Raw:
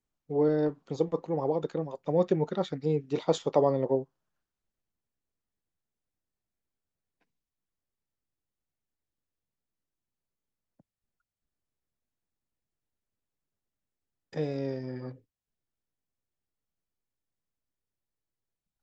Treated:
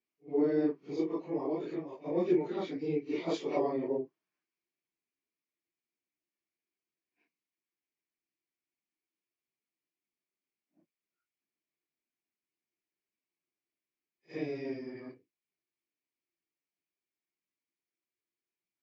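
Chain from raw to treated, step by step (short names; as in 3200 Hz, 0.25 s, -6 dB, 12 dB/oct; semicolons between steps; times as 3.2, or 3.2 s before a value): phase scrambler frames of 0.1 s; speaker cabinet 280–5600 Hz, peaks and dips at 340 Hz +7 dB, 520 Hz -9 dB, 830 Hz -8 dB, 1400 Hz -7 dB, 2300 Hz +9 dB, 3700 Hz -6 dB; pre-echo 59 ms -18.5 dB; gain -1.5 dB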